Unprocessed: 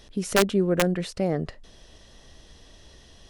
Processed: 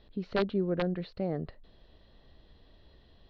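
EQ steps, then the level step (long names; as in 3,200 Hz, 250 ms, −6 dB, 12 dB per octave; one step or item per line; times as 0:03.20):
transistor ladder low-pass 4,600 Hz, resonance 70%
high-frequency loss of the air 250 metres
high-shelf EQ 2,300 Hz −11 dB
+5.0 dB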